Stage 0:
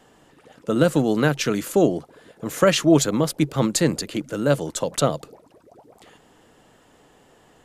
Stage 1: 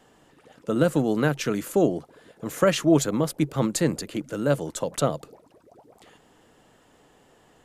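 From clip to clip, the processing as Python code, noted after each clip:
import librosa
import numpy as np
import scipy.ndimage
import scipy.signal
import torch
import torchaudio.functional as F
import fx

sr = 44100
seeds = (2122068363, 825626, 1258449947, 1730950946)

y = fx.dynamic_eq(x, sr, hz=4300.0, q=0.78, threshold_db=-40.0, ratio=4.0, max_db=-4)
y = y * 10.0 ** (-3.0 / 20.0)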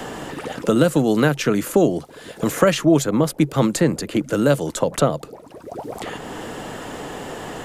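y = fx.band_squash(x, sr, depth_pct=70)
y = y * 10.0 ** (6.0 / 20.0)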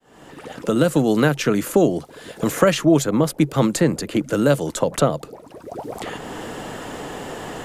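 y = fx.fade_in_head(x, sr, length_s=0.96)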